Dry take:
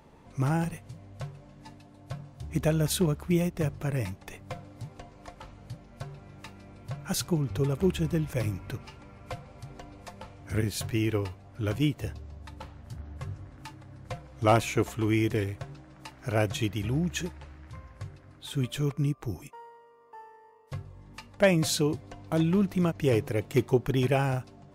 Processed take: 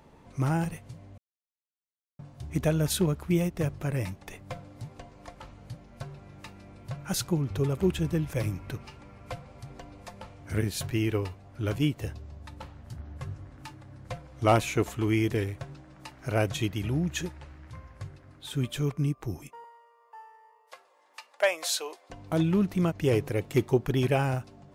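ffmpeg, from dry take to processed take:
-filter_complex "[0:a]asettb=1/sr,asplit=3[a][b][c];[a]atrim=end=19.644[d];[b]atrim=start=19.64:end=22.1,asetpts=PTS-STARTPTS,afade=t=in:d=0.004:c=qsin,afade=t=out:st=2.456:d=0.004:c=qsin,highpass=f=570:w=0.5412,highpass=f=570:w=1.3066[e];[c]atrim=start=22.096[f];[d][e]acrossfade=d=0.004:c1=hsin:c2=qsin[g];[g][f]acrossfade=d=0.004:c1=qsin:c2=hsin,asplit=3[h][i][j];[h]atrim=end=1.18,asetpts=PTS-STARTPTS,afade=t=out:st=1.176:d=0.004:c=hsin[k];[i]atrim=start=1.18:end=2.19,asetpts=PTS-STARTPTS,volume=0[l];[j]atrim=start=2.19,asetpts=PTS-STARTPTS,afade=t=in:d=0.004:c=hsin[m];[k][l][m]concat=n=3:v=0:a=1"

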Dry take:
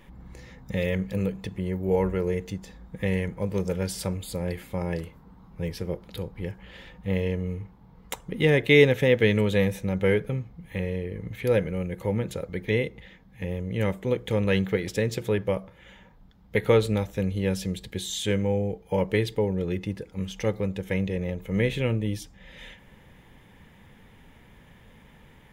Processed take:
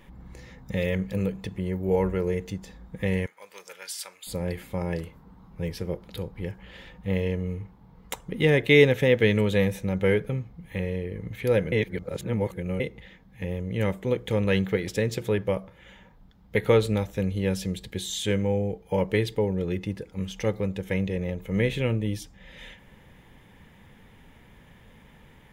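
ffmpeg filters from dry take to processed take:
-filter_complex "[0:a]asettb=1/sr,asplit=3[a][b][c];[a]atrim=end=3.264[d];[b]atrim=start=3.26:end=4.27,asetpts=PTS-STARTPTS,afade=t=in:d=0.004:c=qsin,afade=t=out:st=1.006:d=0.004:c=qsin,highpass=1.4k[e];[c]atrim=start=4.266[f];[d][e]acrossfade=d=0.004:c1=hsin:c2=qsin[g];[g][f]acrossfade=d=0.004:c1=qsin:c2=hsin,asplit=3[h][i][j];[h]atrim=end=11.722[k];[i]atrim=start=11.718:end=12.802,asetpts=PTS-STARTPTS,areverse[l];[j]atrim=start=12.798[m];[k][l]acrossfade=d=0.004:c1=hsin:c2=hsin[n];[n][m]acrossfade=d=0.004:c1=hsin:c2=hsin"

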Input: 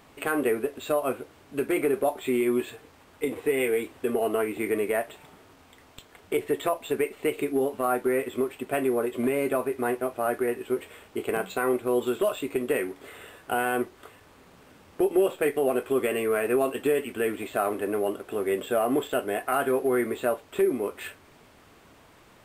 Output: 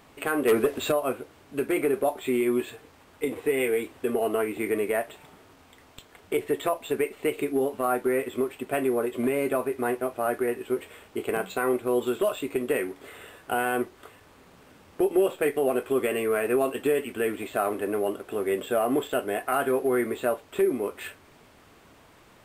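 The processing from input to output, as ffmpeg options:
-filter_complex "[0:a]asplit=3[a][b][c];[a]afade=t=out:st=0.47:d=0.02[d];[b]aeval=exprs='0.168*sin(PI/2*1.58*val(0)/0.168)':c=same,afade=t=in:st=0.47:d=0.02,afade=t=out:st=0.9:d=0.02[e];[c]afade=t=in:st=0.9:d=0.02[f];[d][e][f]amix=inputs=3:normalize=0"

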